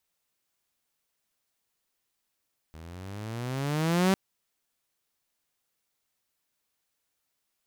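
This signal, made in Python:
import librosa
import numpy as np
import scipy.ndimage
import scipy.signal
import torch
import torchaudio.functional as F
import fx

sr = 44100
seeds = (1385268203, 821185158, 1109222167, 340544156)

y = fx.riser_tone(sr, length_s=1.4, level_db=-17, wave='saw', hz=77.5, rise_st=16.0, swell_db=24)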